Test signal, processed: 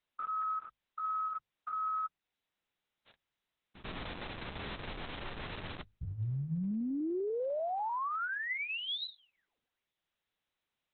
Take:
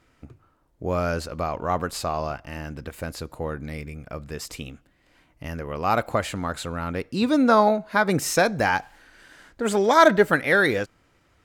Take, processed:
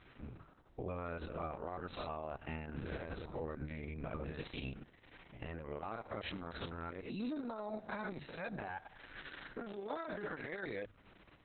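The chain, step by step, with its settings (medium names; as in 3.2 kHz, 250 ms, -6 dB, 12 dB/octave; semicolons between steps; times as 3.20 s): spectrogram pixelated in time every 100 ms; compression 12:1, threshold -36 dBFS; peak limiter -34.5 dBFS; hum notches 50/100/150 Hz; trim +3.5 dB; Opus 6 kbps 48 kHz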